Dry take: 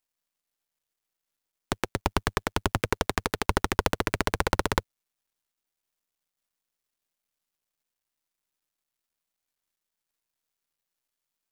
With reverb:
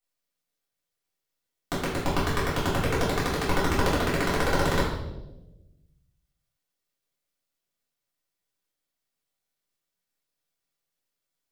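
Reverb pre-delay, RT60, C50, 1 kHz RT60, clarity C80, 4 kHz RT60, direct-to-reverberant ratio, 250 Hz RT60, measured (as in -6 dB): 3 ms, 1.0 s, 3.0 dB, 0.85 s, 6.0 dB, 0.80 s, -9.5 dB, 1.5 s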